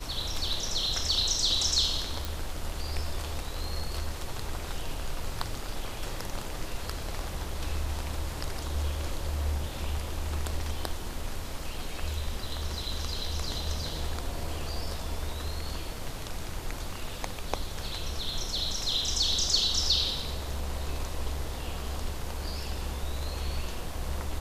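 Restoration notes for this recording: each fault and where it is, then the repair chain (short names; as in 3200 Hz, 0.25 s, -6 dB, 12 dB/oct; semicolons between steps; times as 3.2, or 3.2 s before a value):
2.25 pop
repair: de-click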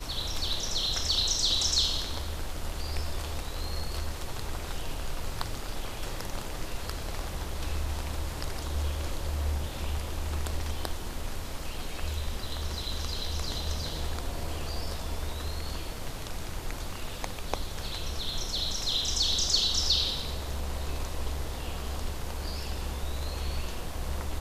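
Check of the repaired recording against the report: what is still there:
none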